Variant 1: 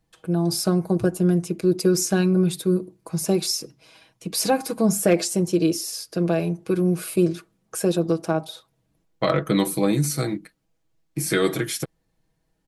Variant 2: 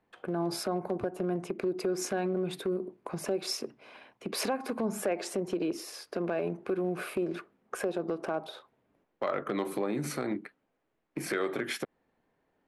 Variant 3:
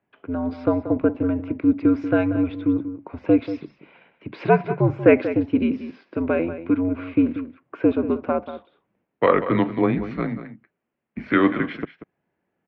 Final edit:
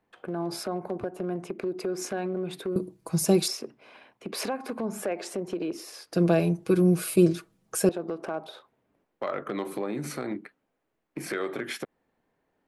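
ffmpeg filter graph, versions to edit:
ffmpeg -i take0.wav -i take1.wav -filter_complex "[0:a]asplit=2[link_01][link_02];[1:a]asplit=3[link_03][link_04][link_05];[link_03]atrim=end=2.762[link_06];[link_01]atrim=start=2.758:end=3.482[link_07];[link_04]atrim=start=3.478:end=6.132[link_08];[link_02]atrim=start=6.128:end=7.892[link_09];[link_05]atrim=start=7.888[link_10];[link_06][link_07]acrossfade=duration=0.004:curve1=hsin:curve2=hsin[link_11];[link_11][link_08]acrossfade=duration=0.004:curve1=hsin:curve2=hsin[link_12];[link_12][link_09]acrossfade=duration=0.004:curve1=hsin:curve2=hsin[link_13];[link_13][link_10]acrossfade=duration=0.004:curve1=hsin:curve2=hsin" out.wav

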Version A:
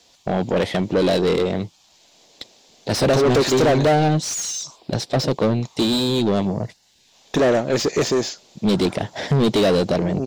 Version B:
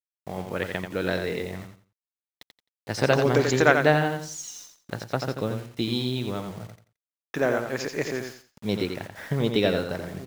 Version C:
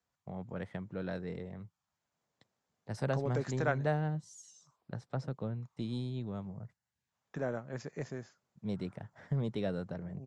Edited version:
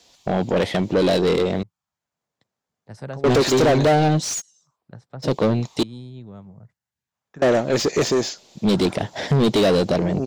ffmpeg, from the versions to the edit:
ffmpeg -i take0.wav -i take1.wav -i take2.wav -filter_complex "[2:a]asplit=3[link_01][link_02][link_03];[0:a]asplit=4[link_04][link_05][link_06][link_07];[link_04]atrim=end=1.632[link_08];[link_01]atrim=start=1.628:end=3.242[link_09];[link_05]atrim=start=3.238:end=4.42[link_10];[link_02]atrim=start=4.38:end=5.26[link_11];[link_06]atrim=start=5.22:end=5.832[link_12];[link_03]atrim=start=5.828:end=7.422[link_13];[link_07]atrim=start=7.418[link_14];[link_08][link_09]acrossfade=duration=0.004:curve1=hsin:curve2=hsin[link_15];[link_15][link_10]acrossfade=duration=0.004:curve1=hsin:curve2=hsin[link_16];[link_16][link_11]acrossfade=duration=0.04:curve1=tri:curve2=tri[link_17];[link_17][link_12]acrossfade=duration=0.04:curve1=tri:curve2=tri[link_18];[link_18][link_13]acrossfade=duration=0.004:curve1=hsin:curve2=hsin[link_19];[link_19][link_14]acrossfade=duration=0.004:curve1=hsin:curve2=hsin" out.wav

